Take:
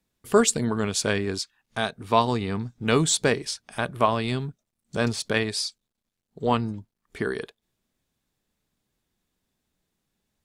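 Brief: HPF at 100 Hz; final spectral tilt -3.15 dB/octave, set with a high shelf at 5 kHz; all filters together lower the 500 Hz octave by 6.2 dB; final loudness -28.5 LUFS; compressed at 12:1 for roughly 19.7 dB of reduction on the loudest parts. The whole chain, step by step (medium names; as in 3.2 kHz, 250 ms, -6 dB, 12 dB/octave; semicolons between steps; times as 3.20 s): high-pass 100 Hz; peaking EQ 500 Hz -8 dB; treble shelf 5 kHz +8.5 dB; compression 12:1, threshold -32 dBFS; trim +9 dB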